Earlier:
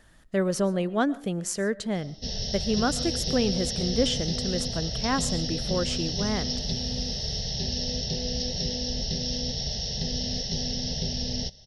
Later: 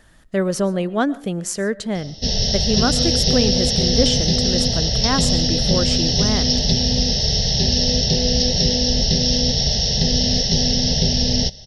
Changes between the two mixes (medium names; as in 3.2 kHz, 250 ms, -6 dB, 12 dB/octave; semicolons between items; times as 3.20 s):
speech +5.0 dB; background +12.0 dB